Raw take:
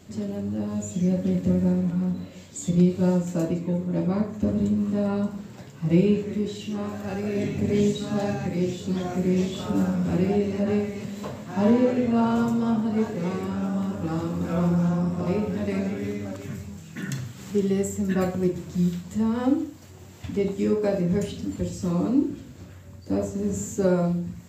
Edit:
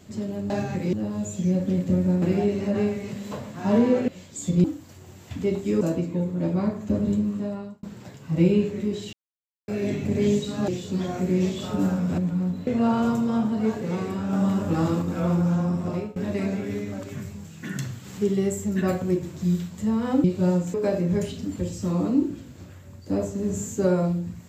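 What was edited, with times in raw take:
1.79–2.28 swap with 10.14–12
2.84–3.34 swap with 19.57–20.74
4.71–5.36 fade out
6.66–7.21 mute
8.21–8.64 move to 0.5
13.66–14.35 gain +4.5 dB
15.2–15.49 fade out, to -23 dB

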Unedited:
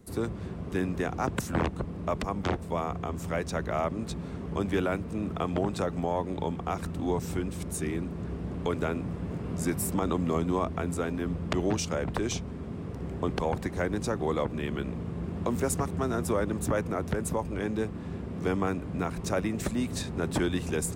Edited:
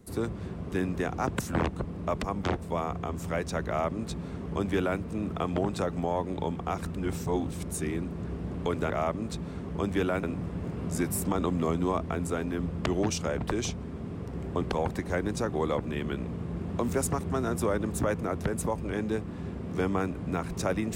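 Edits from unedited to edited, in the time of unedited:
3.67–5 copy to 8.9
6.95–7.51 reverse

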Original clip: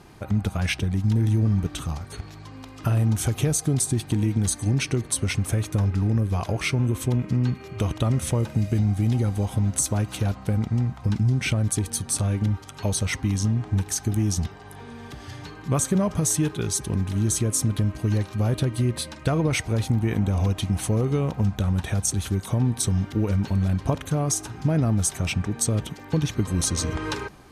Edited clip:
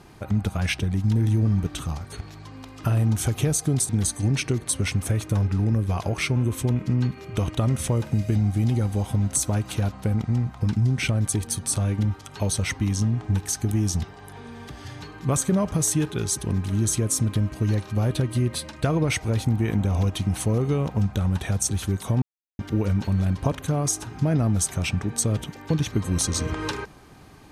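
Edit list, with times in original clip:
3.89–4.32 cut
22.65–23.02 mute

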